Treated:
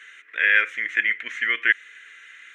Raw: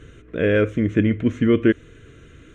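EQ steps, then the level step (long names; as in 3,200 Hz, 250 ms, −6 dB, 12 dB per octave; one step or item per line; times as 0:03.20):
high-pass with resonance 1,900 Hz, resonance Q 4.8
+2.5 dB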